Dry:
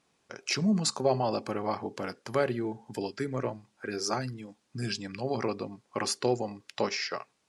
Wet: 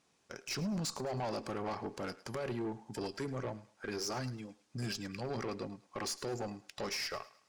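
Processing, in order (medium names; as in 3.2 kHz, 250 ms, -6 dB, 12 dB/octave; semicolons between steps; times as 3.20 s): peaking EQ 6.1 kHz +3.5 dB 0.77 oct; peak limiter -21.5 dBFS, peak gain reduction 10 dB; valve stage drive 31 dB, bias 0.3; thinning echo 106 ms, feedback 39%, high-pass 600 Hz, level -17 dB; trim -1.5 dB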